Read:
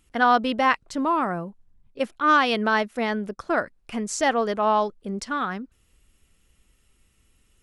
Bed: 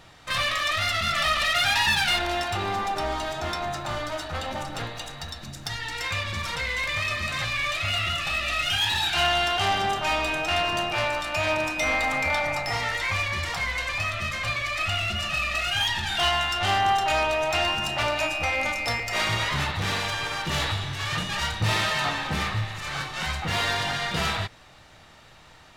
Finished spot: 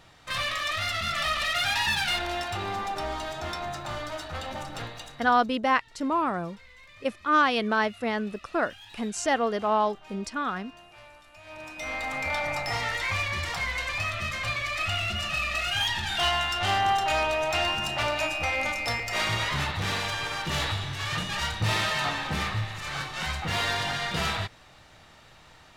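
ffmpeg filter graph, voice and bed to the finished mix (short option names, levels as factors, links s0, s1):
-filter_complex "[0:a]adelay=5050,volume=0.708[s0];[1:a]volume=8.41,afade=t=out:st=4.86:d=0.71:silence=0.0944061,afade=t=in:st=11.44:d=1.19:silence=0.0749894[s1];[s0][s1]amix=inputs=2:normalize=0"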